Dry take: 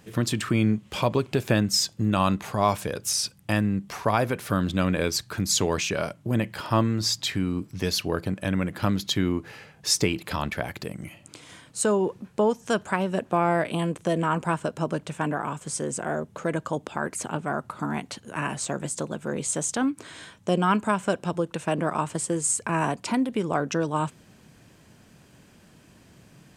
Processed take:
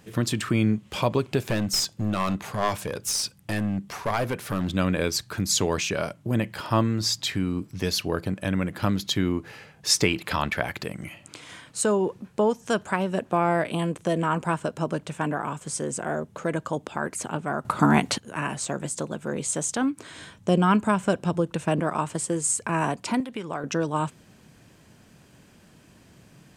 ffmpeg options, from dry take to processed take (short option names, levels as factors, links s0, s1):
-filter_complex "[0:a]asettb=1/sr,asplit=3[s0][s1][s2];[s0]atrim=end=1.494[s3];[s1]atrim=start=1.49:end=4.75,asetpts=PTS-STARTPTS,afade=t=in:d=0.004:c=qsin,afade=t=out:st=3.256:d=0.004:c=qsin,aeval=exprs='clip(val(0),-1,0.075)':c=same[s4];[s2]atrim=start=4.746[s5];[s3][s4]acrossfade=d=0.004:c1=hsin:c2=qsin[s6];[s6][s5]acrossfade=d=0.004:c1=qsin:c2=hsin,asettb=1/sr,asplit=3[s7][s8][s9];[s7]atrim=end=9.894[s10];[s8]atrim=start=9.89:end=11.81,asetpts=PTS-STARTPTS,afade=t=in:d=0.004:c=qsin,afade=t=out:st=1.916:d=0.004:c=qsin,equalizer=f=1800:w=0.45:g=5[s11];[s9]atrim=start=11.806[s12];[s10][s11]acrossfade=d=0.004:c1=hsin:c2=qsin[s13];[s13][s12]acrossfade=d=0.004:c1=qsin:c2=hsin,asettb=1/sr,asplit=3[s14][s15][s16];[s14]atrim=end=20.164[s17];[s15]atrim=start=20.16:end=21.8,asetpts=PTS-STARTPTS,afade=t=in:d=0.004:c=qsin,afade=t=out:st=1.636:d=0.004:c=qsin,lowshelf=f=220:g=7[s18];[s16]atrim=start=21.796[s19];[s17][s18]acrossfade=d=0.004:c1=hsin:c2=qsin[s20];[s20][s19]acrossfade=d=0.004:c1=qsin:c2=hsin,asettb=1/sr,asplit=3[s21][s22][s23];[s21]atrim=end=23.204[s24];[s22]atrim=start=23.2:end=23.64,asetpts=PTS-STARTPTS,afade=t=in:d=0.004:c=qsin,afade=t=out:st=0.436:d=0.004:c=qsin,acrossover=split=840|4300[s25][s26][s27];[s25]acompressor=threshold=0.0251:ratio=4[s28];[s26]acompressor=threshold=0.0224:ratio=4[s29];[s27]acompressor=threshold=0.00141:ratio=4[s30];[s28][s29][s30]amix=inputs=3:normalize=0[s31];[s23]atrim=start=23.636[s32];[s24][s31]acrossfade=d=0.004:c1=hsin:c2=qsin[s33];[s33][s32]acrossfade=d=0.004:c1=qsin:c2=hsin,asplit=3[s34][s35][s36];[s34]atrim=end=17.652[s37];[s35]atrim=start=17.648:end=18.182,asetpts=PTS-STARTPTS,volume=3.35[s38];[s36]atrim=start=18.178[s39];[s37][s38]acrossfade=d=0.004:c1=hsin:c2=hsin[s40];[s40][s39]acrossfade=d=0.004:c1=hsin:c2=hsin"